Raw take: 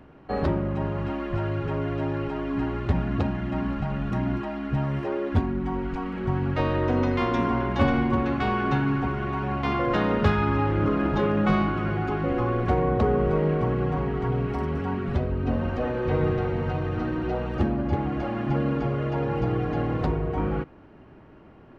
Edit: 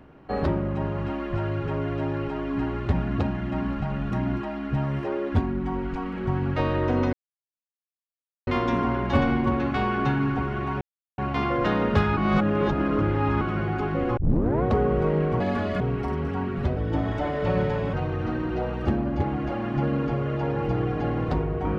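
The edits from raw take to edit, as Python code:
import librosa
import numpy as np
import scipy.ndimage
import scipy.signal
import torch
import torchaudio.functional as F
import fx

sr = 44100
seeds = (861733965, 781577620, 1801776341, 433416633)

y = fx.edit(x, sr, fx.insert_silence(at_s=7.13, length_s=1.34),
    fx.insert_silence(at_s=9.47, length_s=0.37),
    fx.reverse_span(start_s=10.46, length_s=1.24),
    fx.tape_start(start_s=12.46, length_s=0.46),
    fx.speed_span(start_s=13.69, length_s=0.62, speed=1.53),
    fx.speed_span(start_s=15.27, length_s=1.39, speed=1.19), tone=tone)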